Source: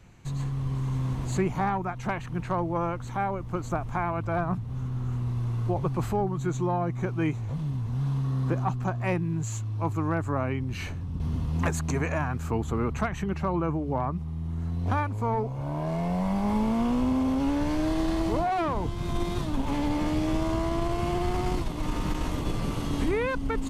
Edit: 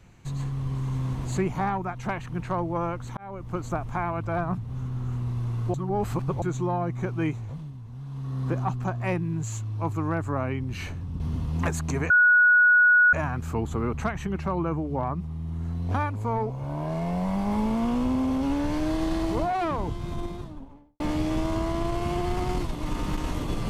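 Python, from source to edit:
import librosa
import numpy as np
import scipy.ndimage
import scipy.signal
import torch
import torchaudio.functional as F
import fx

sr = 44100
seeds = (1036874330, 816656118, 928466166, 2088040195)

y = fx.studio_fade_out(x, sr, start_s=18.68, length_s=1.29)
y = fx.edit(y, sr, fx.fade_in_span(start_s=3.17, length_s=0.33),
    fx.reverse_span(start_s=5.74, length_s=0.68),
    fx.fade_down_up(start_s=7.26, length_s=1.29, db=-10.5, fade_s=0.47),
    fx.insert_tone(at_s=12.1, length_s=1.03, hz=1460.0, db=-14.0), tone=tone)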